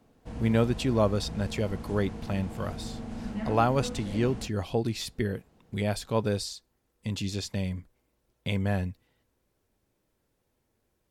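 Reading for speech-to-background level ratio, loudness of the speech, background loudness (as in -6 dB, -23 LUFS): 9.0 dB, -30.0 LUFS, -39.0 LUFS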